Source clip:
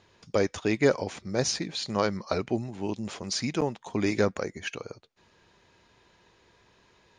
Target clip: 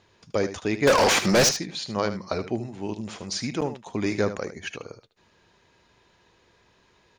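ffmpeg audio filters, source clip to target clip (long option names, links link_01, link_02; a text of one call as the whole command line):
ffmpeg -i in.wav -filter_complex "[0:a]asettb=1/sr,asplit=3[link_01][link_02][link_03];[link_01]atrim=end=0.874[link_04];[link_02]atrim=start=0.87:end=1.49,asetpts=PTS-STARTPTS,afade=type=in:duration=0.004:curve=qsin,afade=type=out:start_time=0.616:duration=0.004:curve=qsin,asplit=2[link_05][link_06];[link_06]highpass=frequency=720:poles=1,volume=35dB,asoftclip=type=tanh:threshold=-10.5dB[link_07];[link_05][link_07]amix=inputs=2:normalize=0,lowpass=frequency=6700:poles=1,volume=-6dB[link_08];[link_03]atrim=start=1.486[link_09];[link_04][link_08]acrossfade=duration=0.004:curve1=hsin:curve2=qsin[link_10];[link_10][link_09]acrossfade=duration=0.004:curve1=qsin:curve2=hsin,asplit=2[link_11][link_12];[link_12]aecho=0:1:76:0.266[link_13];[link_11][link_13]amix=inputs=2:normalize=0" out.wav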